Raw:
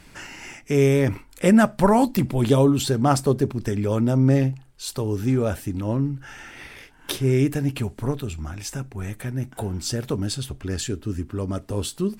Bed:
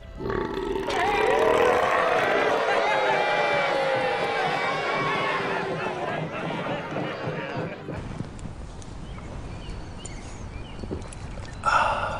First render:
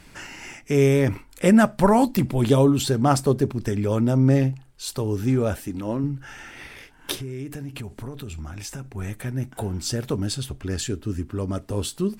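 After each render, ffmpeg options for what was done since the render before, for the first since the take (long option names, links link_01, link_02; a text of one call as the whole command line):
ffmpeg -i in.wav -filter_complex "[0:a]asettb=1/sr,asplit=3[link_01][link_02][link_03];[link_01]atrim=end=5.544[link_04];[link_02]atrim=start=5.54:end=6.04,asetpts=PTS-STARTPTS,afade=type=in:duration=0.004:curve=qsin,afade=type=out:start_time=0.496:duration=0.004:curve=qsin,equalizer=frequency=110:width=1.5:gain=-9.5[link_05];[link_03]atrim=start=6.036[link_06];[link_04][link_05]acrossfade=duration=0.004:curve1=hsin:curve2=qsin[link_07];[link_07][link_06]acrossfade=duration=0.004:curve1=qsin:curve2=hsin,asettb=1/sr,asplit=3[link_08][link_09][link_10];[link_08]atrim=end=7.144[link_11];[link_09]atrim=start=7.14:end=8.92,asetpts=PTS-STARTPTS,afade=type=in:duration=0.004:curve=qsin,afade=type=out:start_time=1.776:duration=0.004:curve=qsin,acompressor=threshold=-30dB:ratio=6:attack=3.2:release=140:knee=1:detection=peak[link_12];[link_10]atrim=start=8.916[link_13];[link_11][link_12]acrossfade=duration=0.004:curve1=hsin:curve2=qsin[link_14];[link_14][link_13]acrossfade=duration=0.004:curve1=qsin:curve2=hsin" out.wav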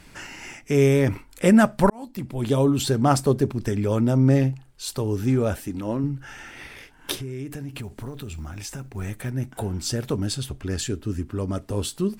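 ffmpeg -i in.wav -filter_complex "[0:a]asettb=1/sr,asplit=3[link_01][link_02][link_03];[link_01]atrim=end=7.694[link_04];[link_02]atrim=start=7.69:end=9.3,asetpts=PTS-STARTPTS,afade=type=in:duration=0.004:curve=qsin,afade=type=out:start_time=1.606:duration=0.004:curve=qsin,acrusher=bits=8:mode=log:mix=0:aa=0.000001[link_05];[link_03]atrim=start=9.296[link_06];[link_04][link_05]acrossfade=duration=0.004:curve1=hsin:curve2=qsin[link_07];[link_07][link_06]acrossfade=duration=0.004:curve1=qsin:curve2=hsin,asplit=2[link_08][link_09];[link_08]atrim=end=1.9,asetpts=PTS-STARTPTS,afade=type=out:start_time=1.896:duration=0.004:curve=hsin[link_10];[link_09]atrim=start=1.9,asetpts=PTS-STARTPTS,afade=type=in:duration=0.99[link_11];[link_10][link_11]concat=n=2:v=0:a=1" out.wav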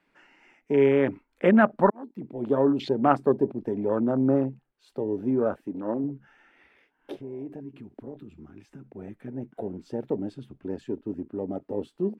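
ffmpeg -i in.wav -filter_complex "[0:a]afwtdn=0.0316,acrossover=split=200 3100:gain=0.0631 1 0.112[link_01][link_02][link_03];[link_01][link_02][link_03]amix=inputs=3:normalize=0" out.wav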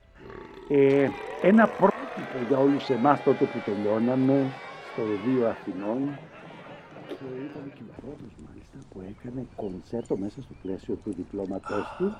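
ffmpeg -i in.wav -i bed.wav -filter_complex "[1:a]volume=-15dB[link_01];[0:a][link_01]amix=inputs=2:normalize=0" out.wav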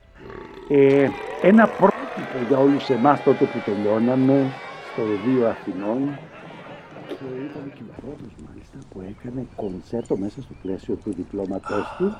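ffmpeg -i in.wav -af "volume=5dB,alimiter=limit=-2dB:level=0:latency=1" out.wav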